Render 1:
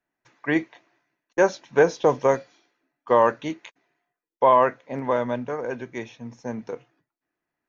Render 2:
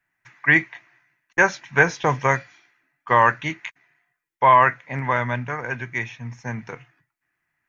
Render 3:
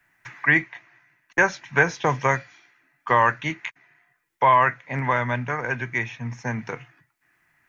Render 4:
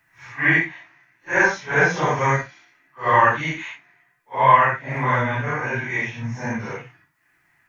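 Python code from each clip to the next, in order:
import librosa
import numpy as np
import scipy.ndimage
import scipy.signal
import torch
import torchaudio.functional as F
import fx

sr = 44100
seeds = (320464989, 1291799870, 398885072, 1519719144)

y1 = fx.graphic_eq_10(x, sr, hz=(125, 250, 500, 2000, 4000), db=(7, -7, -11, 10, -5))
y1 = F.gain(torch.from_numpy(y1), 5.0).numpy()
y2 = fx.band_squash(y1, sr, depth_pct=40)
y2 = F.gain(torch.from_numpy(y2), -1.0).numpy()
y3 = fx.phase_scramble(y2, sr, seeds[0], window_ms=200)
y3 = F.gain(torch.from_numpy(y3), 2.5).numpy()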